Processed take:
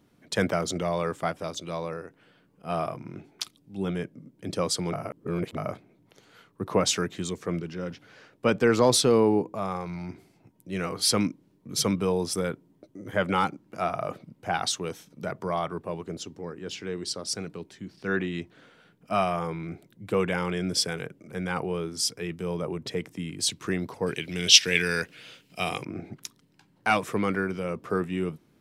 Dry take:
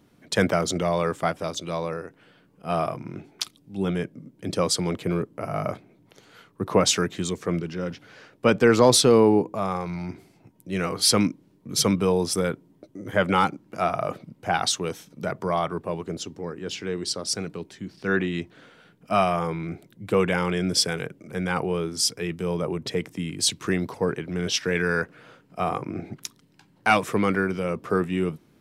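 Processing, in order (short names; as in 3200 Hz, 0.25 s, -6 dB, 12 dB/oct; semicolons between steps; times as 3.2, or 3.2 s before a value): 4.93–5.57 reverse; 24.06–25.85 resonant high shelf 1900 Hz +13 dB, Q 1.5; gain -4 dB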